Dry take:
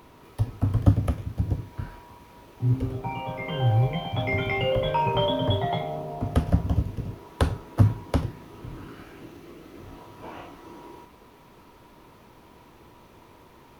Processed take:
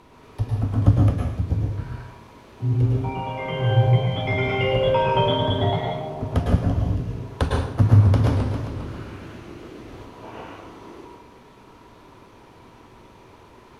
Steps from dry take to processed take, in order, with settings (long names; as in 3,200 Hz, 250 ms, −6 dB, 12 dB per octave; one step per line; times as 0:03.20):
low-pass filter 9,300 Hz 12 dB per octave
dense smooth reverb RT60 0.64 s, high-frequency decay 0.85×, pre-delay 95 ms, DRR −1.5 dB
0:07.70–0:10.05: feedback echo with a swinging delay time 134 ms, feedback 66%, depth 218 cents, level −5.5 dB